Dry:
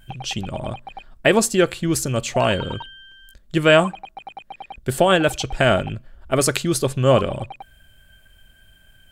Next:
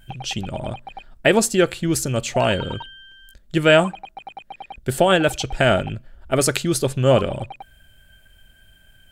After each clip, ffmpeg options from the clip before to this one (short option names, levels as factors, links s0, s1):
-af "bandreject=f=1100:w=11"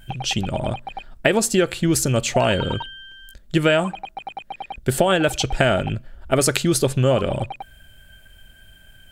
-af "acompressor=threshold=0.141:ratio=12,volume=1.58"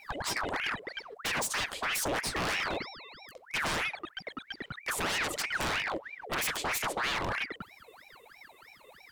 -af "aeval=exprs='0.119*(abs(mod(val(0)/0.119+3,4)-2)-1)':c=same,aeval=exprs='val(0)*sin(2*PI*1400*n/s+1400*0.7/3.1*sin(2*PI*3.1*n/s))':c=same,volume=0.562"